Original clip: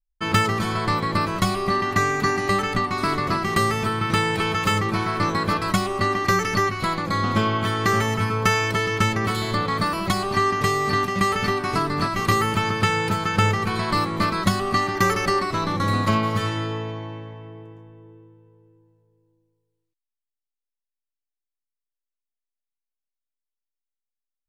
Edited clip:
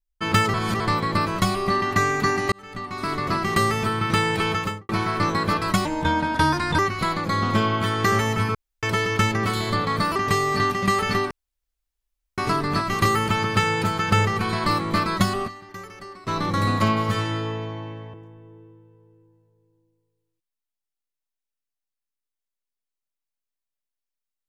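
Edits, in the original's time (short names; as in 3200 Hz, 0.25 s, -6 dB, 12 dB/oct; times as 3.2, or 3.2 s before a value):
0.54–0.8 reverse
2.52–3.41 fade in
4.52–4.89 studio fade out
5.85–6.6 speed 80%
8.36–8.64 room tone
9.97–10.49 cut
11.64 insert room tone 1.07 s
14.42–15.85 dip -18.5 dB, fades 0.32 s logarithmic
17.4–17.67 cut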